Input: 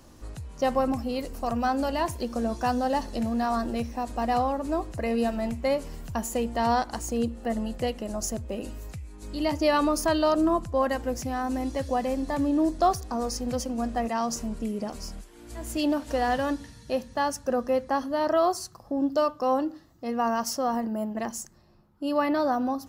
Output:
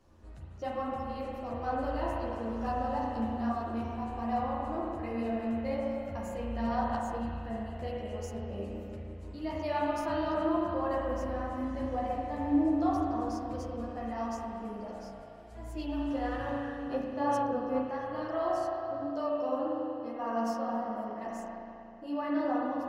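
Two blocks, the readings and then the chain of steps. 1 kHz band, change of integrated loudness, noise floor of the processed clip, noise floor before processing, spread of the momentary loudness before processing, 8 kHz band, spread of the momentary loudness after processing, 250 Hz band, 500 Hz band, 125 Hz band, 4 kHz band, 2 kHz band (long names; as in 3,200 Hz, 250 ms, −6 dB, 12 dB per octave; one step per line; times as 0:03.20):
−6.0 dB, −6.0 dB, −47 dBFS, −51 dBFS, 11 LU, below −15 dB, 10 LU, −5.0 dB, −6.5 dB, −3.0 dB, −13.5 dB, −8.0 dB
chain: high-shelf EQ 5,100 Hz −11.5 dB
spring reverb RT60 3 s, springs 35 ms, chirp 75 ms, DRR −4 dB
multi-voice chorus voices 6, 1.2 Hz, delay 12 ms, depth 3 ms
level −9 dB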